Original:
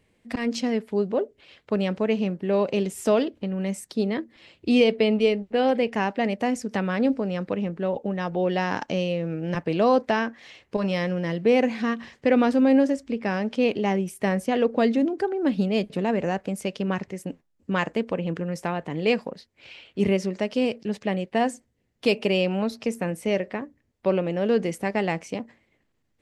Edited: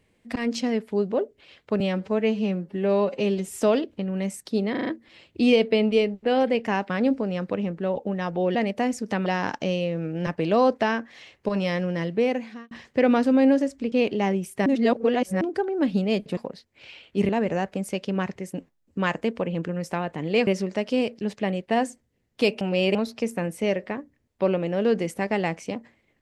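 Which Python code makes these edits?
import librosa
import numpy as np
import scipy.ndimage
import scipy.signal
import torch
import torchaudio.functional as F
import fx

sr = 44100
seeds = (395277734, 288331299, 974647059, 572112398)

y = fx.edit(x, sr, fx.stretch_span(start_s=1.8, length_s=1.12, factor=1.5),
    fx.stutter(start_s=4.15, slice_s=0.04, count=5),
    fx.move(start_s=6.18, length_s=0.71, to_s=8.54),
    fx.fade_out_span(start_s=11.3, length_s=0.69),
    fx.cut(start_s=13.2, length_s=0.36),
    fx.reverse_span(start_s=14.3, length_s=0.75),
    fx.move(start_s=19.19, length_s=0.92, to_s=16.01),
    fx.reverse_span(start_s=22.25, length_s=0.34), tone=tone)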